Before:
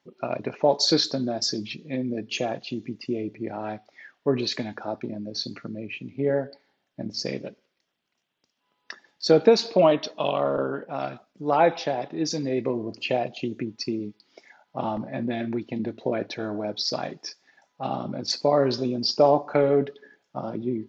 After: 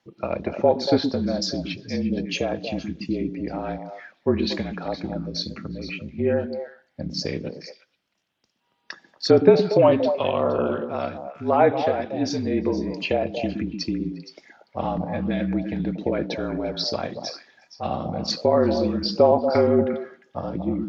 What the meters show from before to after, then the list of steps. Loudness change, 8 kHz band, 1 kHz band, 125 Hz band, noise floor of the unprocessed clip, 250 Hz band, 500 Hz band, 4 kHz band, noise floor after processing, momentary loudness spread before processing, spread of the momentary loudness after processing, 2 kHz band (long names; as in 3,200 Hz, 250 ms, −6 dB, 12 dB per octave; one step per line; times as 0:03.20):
+2.0 dB, can't be measured, +1.0 dB, +4.5 dB, −76 dBFS, +4.0 dB, +2.5 dB, −1.5 dB, −70 dBFS, 15 LU, 15 LU, +1.5 dB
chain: treble cut that deepens with the level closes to 2,500 Hz, closed at −19 dBFS
echo through a band-pass that steps 117 ms, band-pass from 260 Hz, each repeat 1.4 octaves, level −3.5 dB
frequency shifter −39 Hz
level +2 dB